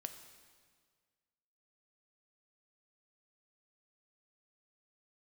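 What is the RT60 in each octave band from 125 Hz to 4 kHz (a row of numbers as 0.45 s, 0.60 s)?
1.9 s, 1.8 s, 1.8 s, 1.7 s, 1.6 s, 1.6 s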